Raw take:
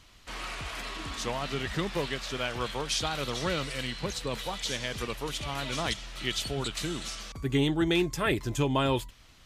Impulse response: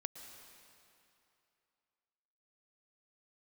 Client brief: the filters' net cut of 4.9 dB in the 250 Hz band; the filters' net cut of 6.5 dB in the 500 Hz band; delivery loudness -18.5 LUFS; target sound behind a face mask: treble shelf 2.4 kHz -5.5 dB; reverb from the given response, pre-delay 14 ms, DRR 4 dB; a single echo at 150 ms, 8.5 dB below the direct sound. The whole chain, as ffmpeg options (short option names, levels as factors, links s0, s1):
-filter_complex "[0:a]equalizer=f=250:t=o:g=-4,equalizer=f=500:t=o:g=-7,aecho=1:1:150:0.376,asplit=2[s0][s1];[1:a]atrim=start_sample=2205,adelay=14[s2];[s1][s2]afir=irnorm=-1:irlink=0,volume=0.841[s3];[s0][s3]amix=inputs=2:normalize=0,highshelf=f=2400:g=-5.5,volume=5.01"